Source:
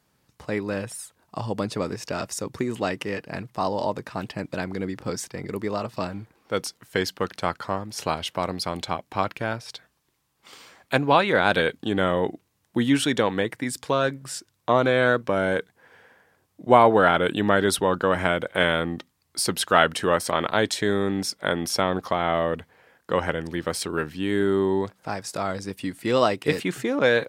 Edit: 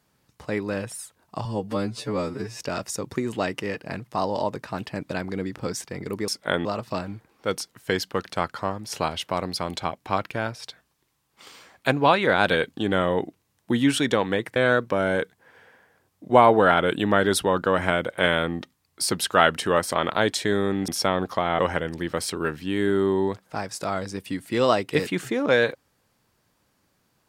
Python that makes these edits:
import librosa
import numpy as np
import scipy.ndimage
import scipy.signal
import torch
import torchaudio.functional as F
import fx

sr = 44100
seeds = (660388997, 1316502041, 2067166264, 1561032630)

y = fx.edit(x, sr, fx.stretch_span(start_s=1.45, length_s=0.57, factor=2.0),
    fx.cut(start_s=13.62, length_s=1.31),
    fx.move(start_s=21.25, length_s=0.37, to_s=5.71),
    fx.cut(start_s=22.33, length_s=0.79), tone=tone)